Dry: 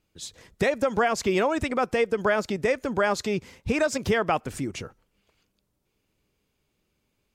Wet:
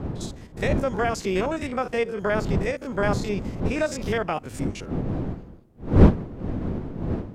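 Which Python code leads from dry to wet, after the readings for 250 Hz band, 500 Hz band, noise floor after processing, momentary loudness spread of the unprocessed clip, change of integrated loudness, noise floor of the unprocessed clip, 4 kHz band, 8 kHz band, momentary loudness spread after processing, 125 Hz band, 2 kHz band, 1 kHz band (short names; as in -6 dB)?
+5.0 dB, -0.5 dB, -45 dBFS, 11 LU, 0.0 dB, -76 dBFS, -2.5 dB, -3.0 dB, 11 LU, +12.5 dB, -2.5 dB, -1.5 dB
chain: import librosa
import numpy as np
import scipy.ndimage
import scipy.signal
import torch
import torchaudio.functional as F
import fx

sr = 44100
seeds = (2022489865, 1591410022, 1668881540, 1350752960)

y = fx.spec_steps(x, sr, hold_ms=50)
y = fx.dmg_wind(y, sr, seeds[0], corner_hz=240.0, level_db=-26.0)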